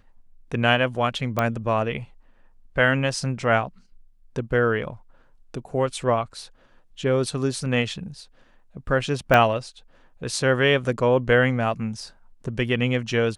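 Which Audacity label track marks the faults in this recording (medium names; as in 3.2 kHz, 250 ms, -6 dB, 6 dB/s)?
1.390000	1.390000	pop -9 dBFS
9.340000	9.340000	pop -6 dBFS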